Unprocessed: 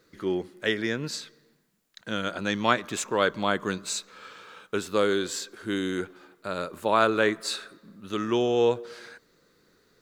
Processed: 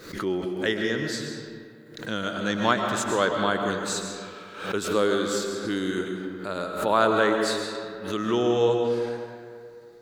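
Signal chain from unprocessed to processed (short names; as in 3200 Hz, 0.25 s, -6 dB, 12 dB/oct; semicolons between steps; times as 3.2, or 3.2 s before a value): dynamic EQ 2400 Hz, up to -7 dB, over -49 dBFS, Q 5; on a send at -3 dB: reverb RT60 2.2 s, pre-delay 80 ms; on the sum: backwards sustainer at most 84 dB/s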